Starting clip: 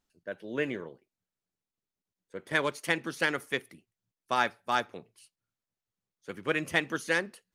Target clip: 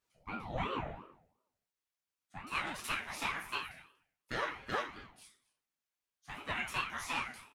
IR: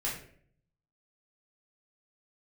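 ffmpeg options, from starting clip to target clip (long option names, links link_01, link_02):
-filter_complex "[0:a]asetnsamples=nb_out_samples=441:pad=0,asendcmd='0.86 highpass f 740',highpass=210,acompressor=threshold=-34dB:ratio=6,aecho=1:1:240:0.075[link_01];[1:a]atrim=start_sample=2205[link_02];[link_01][link_02]afir=irnorm=-1:irlink=0,aeval=exprs='val(0)*sin(2*PI*530*n/s+530*0.55/2.8*sin(2*PI*2.8*n/s))':channel_layout=same"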